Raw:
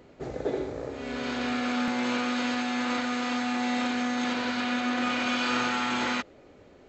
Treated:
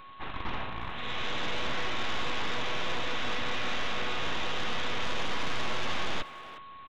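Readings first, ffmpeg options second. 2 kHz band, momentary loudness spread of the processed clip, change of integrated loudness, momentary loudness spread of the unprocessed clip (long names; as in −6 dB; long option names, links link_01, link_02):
−3.5 dB, 5 LU, −5.0 dB, 7 LU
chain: -filter_complex "[0:a]bandpass=frequency=1600:width_type=q:width=0.59:csg=0,equalizer=frequency=2700:width=0.92:gain=6.5,acontrast=80,aresample=8000,aeval=exprs='abs(val(0))':channel_layout=same,aresample=44100,acrossover=split=2700[link_01][link_02];[link_02]acompressor=threshold=-34dB:ratio=4:attack=1:release=60[link_03];[link_01][link_03]amix=inputs=2:normalize=0,asoftclip=type=tanh:threshold=-23dB,aeval=exprs='val(0)+0.00447*sin(2*PI*1100*n/s)':channel_layout=same,asplit=2[link_04][link_05];[link_05]adelay=360,highpass=300,lowpass=3400,asoftclip=type=hard:threshold=-32dB,volume=-11dB[link_06];[link_04][link_06]amix=inputs=2:normalize=0"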